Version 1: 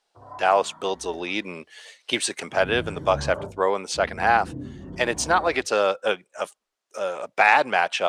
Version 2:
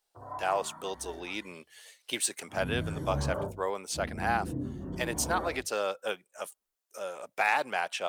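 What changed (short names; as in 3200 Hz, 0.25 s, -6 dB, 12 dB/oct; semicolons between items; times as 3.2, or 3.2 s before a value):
speech -10.5 dB; master: remove air absorption 78 m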